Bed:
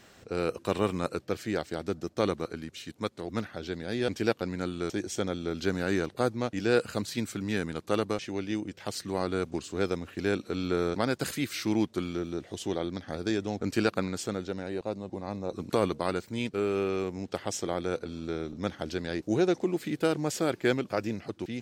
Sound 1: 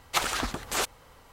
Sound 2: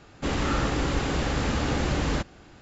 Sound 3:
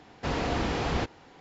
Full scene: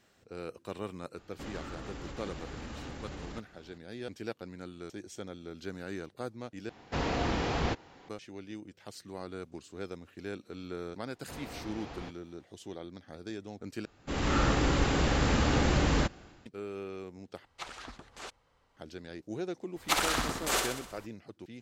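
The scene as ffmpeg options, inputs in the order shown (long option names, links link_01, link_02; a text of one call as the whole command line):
ffmpeg -i bed.wav -i cue0.wav -i cue1.wav -i cue2.wav -filter_complex "[2:a]asplit=2[link_01][link_02];[3:a]asplit=2[link_03][link_04];[1:a]asplit=2[link_05][link_06];[0:a]volume=-11.5dB[link_07];[link_01]alimiter=level_in=1dB:limit=-24dB:level=0:latency=1:release=171,volume=-1dB[link_08];[link_02]dynaudnorm=framelen=100:gausssize=7:maxgain=11.5dB[link_09];[link_05]lowpass=6200[link_10];[link_06]aecho=1:1:63|126|189|252|315|378|441|504:0.562|0.321|0.183|0.104|0.0594|0.0338|0.0193|0.011[link_11];[link_07]asplit=4[link_12][link_13][link_14][link_15];[link_12]atrim=end=6.694[link_16];[link_03]atrim=end=1.4,asetpts=PTS-STARTPTS,volume=-2dB[link_17];[link_13]atrim=start=8.086:end=13.854[link_18];[link_09]atrim=end=2.61,asetpts=PTS-STARTPTS,volume=-11dB[link_19];[link_14]atrim=start=16.456:end=17.454[link_20];[link_10]atrim=end=1.32,asetpts=PTS-STARTPTS,volume=-15.5dB[link_21];[link_15]atrim=start=18.766[link_22];[link_08]atrim=end=2.61,asetpts=PTS-STARTPTS,volume=-9dB,afade=type=in:duration=0.004:curve=hsin,afade=type=out:start_time=2.606:duration=0.004:curve=hsin,adelay=1170[link_23];[link_04]atrim=end=1.4,asetpts=PTS-STARTPTS,volume=-15.5dB,afade=type=in:duration=0.004:curve=hsin,afade=type=out:start_time=1.396:duration=0.004:curve=hsin,adelay=11050[link_24];[link_11]atrim=end=1.32,asetpts=PTS-STARTPTS,volume=-2dB,afade=type=in:duration=0.02,afade=type=out:start_time=1.3:duration=0.02,adelay=19750[link_25];[link_16][link_17]acrossfade=duration=0.004:curve1=hsin:curve2=hsin[link_26];[link_26][link_18]acrossfade=duration=0.004:curve1=hsin:curve2=hsin[link_27];[link_27][link_19]acrossfade=duration=0.004:curve1=hsin:curve2=hsin[link_28];[link_28][link_20]acrossfade=duration=0.004:curve1=hsin:curve2=hsin[link_29];[link_29][link_21]acrossfade=duration=0.004:curve1=hsin:curve2=hsin[link_30];[link_30][link_22]acrossfade=duration=0.004:curve1=hsin:curve2=hsin[link_31];[link_31][link_23][link_24][link_25]amix=inputs=4:normalize=0" out.wav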